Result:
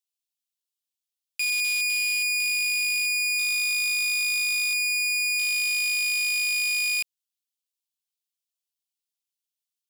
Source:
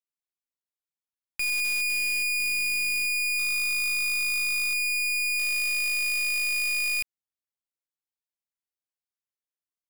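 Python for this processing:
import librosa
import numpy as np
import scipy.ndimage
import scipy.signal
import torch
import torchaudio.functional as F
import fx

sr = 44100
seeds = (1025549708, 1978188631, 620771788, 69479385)

y = scipy.signal.sosfilt(scipy.signal.butter(6, 2700.0, 'highpass', fs=sr, output='sos'), x)
y = fx.slew_limit(y, sr, full_power_hz=160.0)
y = F.gain(torch.from_numpy(y), 6.5).numpy()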